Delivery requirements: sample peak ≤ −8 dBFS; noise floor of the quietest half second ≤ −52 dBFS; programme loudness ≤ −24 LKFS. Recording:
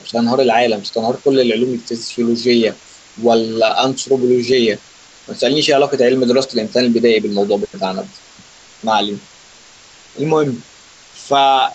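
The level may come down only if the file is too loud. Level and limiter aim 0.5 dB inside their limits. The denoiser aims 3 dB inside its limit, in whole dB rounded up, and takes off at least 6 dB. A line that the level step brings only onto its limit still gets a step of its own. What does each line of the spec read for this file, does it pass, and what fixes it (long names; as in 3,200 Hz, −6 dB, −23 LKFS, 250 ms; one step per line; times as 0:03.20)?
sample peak −2.0 dBFS: out of spec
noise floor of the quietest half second −43 dBFS: out of spec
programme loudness −15.5 LKFS: out of spec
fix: broadband denoise 6 dB, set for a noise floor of −43 dBFS
level −9 dB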